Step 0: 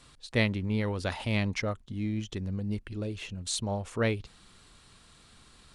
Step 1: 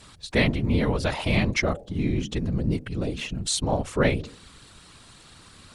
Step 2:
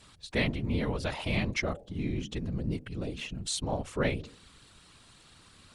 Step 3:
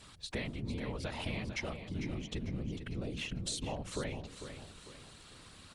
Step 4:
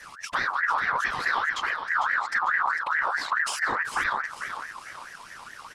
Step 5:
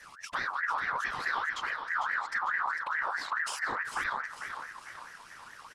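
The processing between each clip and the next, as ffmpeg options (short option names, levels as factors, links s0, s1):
-filter_complex "[0:a]bandreject=f=73.28:t=h:w=4,bandreject=f=146.56:t=h:w=4,bandreject=f=219.84:t=h:w=4,bandreject=f=293.12:t=h:w=4,bandreject=f=366.4:t=h:w=4,bandreject=f=439.68:t=h:w=4,bandreject=f=512.96:t=h:w=4,bandreject=f=586.24:t=h:w=4,bandreject=f=659.52:t=h:w=4,bandreject=f=732.8:t=h:w=4,asplit=2[s0][s1];[s1]alimiter=limit=0.0708:level=0:latency=1:release=126,volume=0.708[s2];[s0][s2]amix=inputs=2:normalize=0,afftfilt=real='hypot(re,im)*cos(2*PI*random(0))':imag='hypot(re,im)*sin(2*PI*random(1))':win_size=512:overlap=0.75,volume=2.82"
-af "equalizer=f=2900:t=o:w=0.77:g=2,volume=0.422"
-filter_complex "[0:a]acompressor=threshold=0.0158:ratio=10,asplit=2[s0][s1];[s1]aecho=0:1:449|898|1347|1796:0.335|0.134|0.0536|0.0214[s2];[s0][s2]amix=inputs=2:normalize=0,volume=1.12"
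-af "lowshelf=f=270:g=10.5,aeval=exprs='0.0562*(cos(1*acos(clip(val(0)/0.0562,-1,1)))-cos(1*PI/2))+0.00251*(cos(4*acos(clip(val(0)/0.0562,-1,1)))-cos(4*PI/2))':c=same,aeval=exprs='val(0)*sin(2*PI*1400*n/s+1400*0.3/4.7*sin(2*PI*4.7*n/s))':c=same,volume=2.66"
-af "aecho=1:1:451|902|1353|1804:0.178|0.0818|0.0376|0.0173,volume=0.473"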